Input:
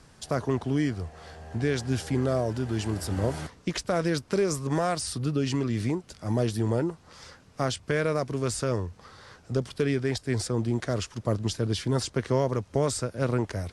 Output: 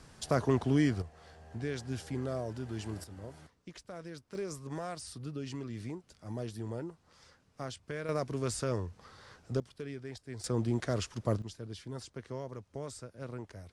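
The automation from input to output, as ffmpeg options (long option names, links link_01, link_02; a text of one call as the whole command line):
ffmpeg -i in.wav -af "asetnsamples=nb_out_samples=441:pad=0,asendcmd='1.02 volume volume -10dB;3.04 volume volume -19dB;4.35 volume volume -13dB;8.09 volume volume -5.5dB;9.6 volume volume -16dB;10.44 volume volume -4dB;11.42 volume volume -16dB',volume=-1dB" out.wav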